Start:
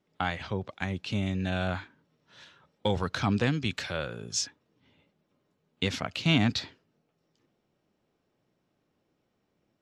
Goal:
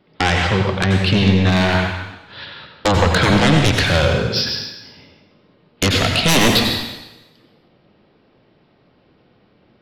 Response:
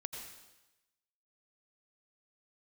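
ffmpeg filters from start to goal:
-filter_complex "[0:a]aresample=11025,aresample=44100,asettb=1/sr,asplit=3[link_01][link_02][link_03];[link_01]atrim=end=1.494[link_04];[link_02]atrim=start=1.49:end=2.86,asetpts=PTS-STARTPTS,afade=type=in:duration=0.004:curve=qsin,afade=type=out:start_time=1.366:duration=0.004:curve=qsin,aeval=exprs='clip(val(0),-1,0.0211)':channel_layout=same[link_05];[link_03]atrim=start=2.856[link_06];[link_04][link_05]acrossfade=duration=0.004:curve1=hsin:curve2=qsin[link_07];[link_07][link_06]acrossfade=duration=0.004:curve1=qsin:curve2=hsin,asettb=1/sr,asplit=3[link_08][link_09][link_10];[link_08]atrim=end=3.644[link_11];[link_09]atrim=start=3.64:end=4.06,asetpts=PTS-STARTPTS,afade=type=in:duration=0.004:curve=qsin,afade=type=out:start_time=0.416:duration=0.004:curve=qsin,lowshelf=frequency=130:gain=9.5[link_12];[link_10]atrim=start=4.056[link_13];[link_11][link_12]acrossfade=duration=0.004:curve1=hsin:curve2=qsin[link_14];[link_14][link_13]acrossfade=duration=0.004:curve1=qsin:curve2=hsin,aeval=exprs='0.266*sin(PI/2*4.47*val(0)/0.266)':channel_layout=same[link_15];[1:a]atrim=start_sample=2205[link_16];[link_15][link_16]afir=irnorm=-1:irlink=0,volume=4.5dB"

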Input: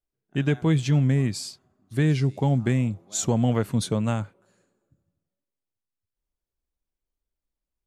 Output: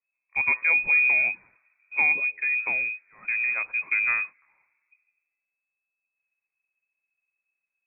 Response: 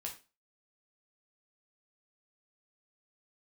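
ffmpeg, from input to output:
-af "asetnsamples=nb_out_samples=441:pad=0,asendcmd='2.12 equalizer g -13;3.81 equalizer g -3.5',equalizer=frequency=380:width=0.5:gain=-5,lowpass=frequency=2200:width_type=q:width=0.5098,lowpass=frequency=2200:width_type=q:width=0.6013,lowpass=frequency=2200:width_type=q:width=0.9,lowpass=frequency=2200:width_type=q:width=2.563,afreqshift=-2600,volume=2dB"

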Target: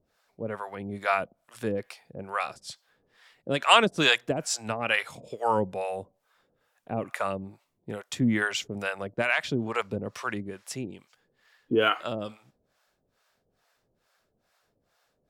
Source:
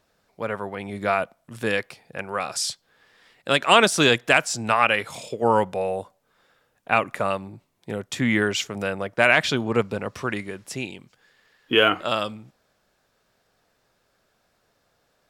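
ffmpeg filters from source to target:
ffmpeg -i in.wav -filter_complex "[0:a]asettb=1/sr,asplit=3[link_01][link_02][link_03];[link_01]atrim=end=9.214[link_04];[link_02]atrim=start=9.21:end=9.68,asetpts=PTS-STARTPTS,afade=type=in:duration=0.004:curve=qsin,afade=type=out:start_time=0.466:duration=0.004:curve=qsin,acompressor=threshold=-19dB:ratio=4[link_05];[link_03]atrim=start=9.676[link_06];[link_04][link_05]acrossfade=duration=0.004:curve1=hsin:curve2=qsin[link_07];[link_07][link_06]acrossfade=duration=0.004:curve1=qsin:curve2=hsin,acrossover=split=570[link_08][link_09];[link_08]aeval=exprs='val(0)*(1-1/2+1/2*cos(2*PI*2.3*n/s))':channel_layout=same[link_10];[link_09]aeval=exprs='val(0)*(1-1/2-1/2*cos(2*PI*2.3*n/s))':channel_layout=same[link_11];[link_10][link_11]amix=inputs=2:normalize=0" out.wav

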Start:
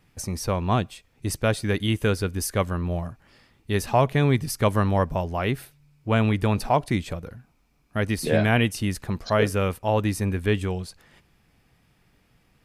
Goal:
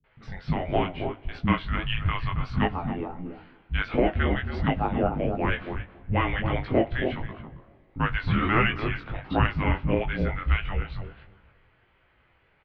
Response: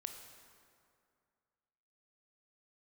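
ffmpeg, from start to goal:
-filter_complex "[0:a]asplit=2[link_01][link_02];[link_02]adelay=274,lowpass=frequency=820:poles=1,volume=-5dB,asplit=2[link_03][link_04];[link_04]adelay=274,lowpass=frequency=820:poles=1,volume=0.16,asplit=2[link_05][link_06];[link_06]adelay=274,lowpass=frequency=820:poles=1,volume=0.16[link_07];[link_03][link_05][link_07]amix=inputs=3:normalize=0[link_08];[link_01][link_08]amix=inputs=2:normalize=0,flanger=delay=7.9:depth=4.5:regen=54:speed=0.43:shape=triangular,asplit=2[link_09][link_10];[1:a]atrim=start_sample=2205,asetrate=39690,aresample=44100[link_11];[link_10][link_11]afir=irnorm=-1:irlink=0,volume=-13dB[link_12];[link_09][link_12]amix=inputs=2:normalize=0,flanger=delay=18:depth=3.9:speed=1.5,alimiter=limit=-17.5dB:level=0:latency=1:release=247,highpass=frequency=300:width_type=q:width=0.5412,highpass=frequency=300:width_type=q:width=1.307,lowpass=frequency=3500:width_type=q:width=0.5176,lowpass=frequency=3500:width_type=q:width=0.7071,lowpass=frequency=3500:width_type=q:width=1.932,afreqshift=-350,acrossover=split=250[link_13][link_14];[link_14]adelay=40[link_15];[link_13][link_15]amix=inputs=2:normalize=0,acontrast=53,volume=3.5dB"

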